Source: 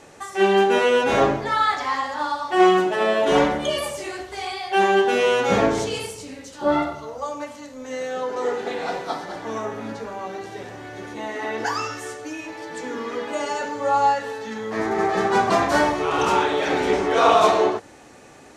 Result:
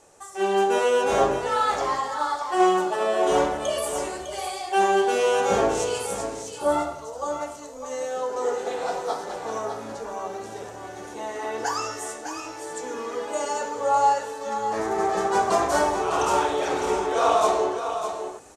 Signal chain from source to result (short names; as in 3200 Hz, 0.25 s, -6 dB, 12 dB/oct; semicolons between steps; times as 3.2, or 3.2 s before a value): graphic EQ 125/250/2000/4000/8000 Hz -7/-8/-8/-5/+6 dB; AGC gain up to 7 dB; echo 0.604 s -8.5 dB; gain -6 dB